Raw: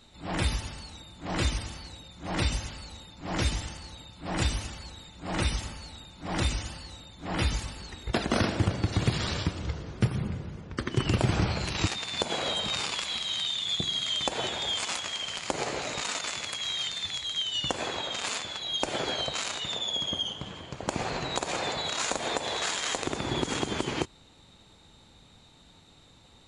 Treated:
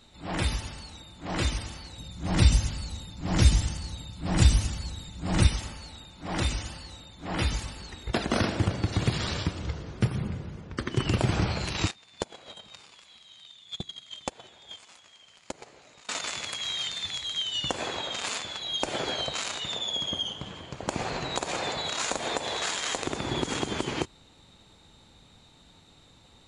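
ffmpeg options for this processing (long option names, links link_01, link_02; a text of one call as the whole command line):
ffmpeg -i in.wav -filter_complex "[0:a]asettb=1/sr,asplit=3[link_01][link_02][link_03];[link_01]atrim=end=1.984[link_04];[link_02]atrim=start=1.98:end=5.47,asetpts=PTS-STARTPTS,afade=type=in:duration=0.004:curve=qsin,afade=type=out:start_time=3.486:duration=0.004:curve=qsin,bass=frequency=250:gain=10,treble=frequency=4000:gain=6[link_05];[link_03]atrim=start=5.466[link_06];[link_04][link_05]acrossfade=duration=0.004:curve1=hsin:curve2=qsin[link_07];[link_07][link_06]acrossfade=duration=0.004:curve1=qsin:curve2=hsin,asettb=1/sr,asplit=3[link_08][link_09][link_10];[link_08]atrim=end=11.914[link_11];[link_09]atrim=start=11.91:end=16.09,asetpts=PTS-STARTPTS,afade=type=in:duration=0.004:curve=qsin,afade=type=out:start_time=4.176:duration=0.004:curve=qsin,agate=range=-21dB:threshold=-28dB:ratio=16:release=100:detection=peak[link_12];[link_10]atrim=start=16.086[link_13];[link_11][link_12]acrossfade=duration=0.004:curve1=hsin:curve2=qsin[link_14];[link_14][link_13]acrossfade=duration=0.004:curve1=qsin:curve2=hsin" out.wav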